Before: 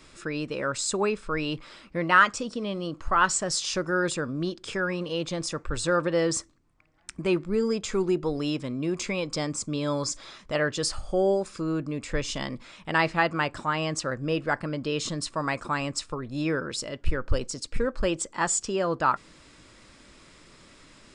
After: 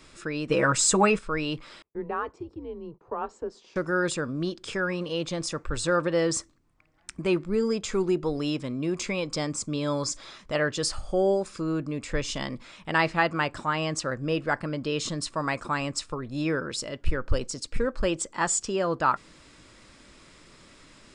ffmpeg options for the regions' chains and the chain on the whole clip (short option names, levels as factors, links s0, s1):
-filter_complex "[0:a]asettb=1/sr,asplit=3[s0][s1][s2];[s0]atrim=end=0.494[s3];[s1]atrim=start=0.49:end=1.19,asetpts=PTS-STARTPTS,afade=t=in:d=0.004:c=qsin,afade=t=out:st=0.696:d=0.004:c=qsin,equalizer=f=4200:t=o:w=0.45:g=-6.5,aecho=1:1:6.2:0.73,atrim=end_sample=30870,acontrast=65[s4];[s2]atrim=start=1.186[s5];[s3][s4]acrossfade=d=0.004:c1=hsin:c2=qsin[s6];[s6][s5]acrossfade=d=0.004:c1=qsin:c2=hsin,asettb=1/sr,asplit=3[s7][s8][s9];[s7]atrim=end=1.824[s10];[s8]atrim=start=1.82:end=3.76,asetpts=PTS-STARTPTS,afade=t=in:d=0.004:c=qsin,afade=t=out:st=1.936:d=0.004:c=qsin,agate=range=0.0708:threshold=0.00562:ratio=16:release=100:detection=peak,bandpass=f=580:t=q:w=2.6,afreqshift=-150[s11];[s9]atrim=start=3.756[s12];[s10][s11]acrossfade=d=0.004:c1=hsin:c2=qsin[s13];[s13][s12]acrossfade=d=0.004:c1=qsin:c2=hsin"